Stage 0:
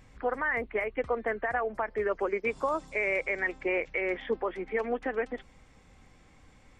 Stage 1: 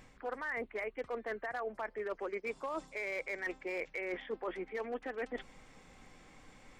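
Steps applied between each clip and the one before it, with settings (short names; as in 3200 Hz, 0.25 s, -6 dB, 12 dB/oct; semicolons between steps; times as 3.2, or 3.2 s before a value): overloaded stage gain 22.5 dB; bell 67 Hz -11.5 dB 1.7 oct; reverse; compressor 6:1, threshold -39 dBFS, peak gain reduction 13 dB; reverse; gain +2.5 dB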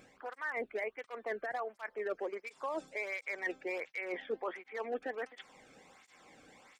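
tape flanging out of phase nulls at 1.4 Hz, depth 1.1 ms; gain +3 dB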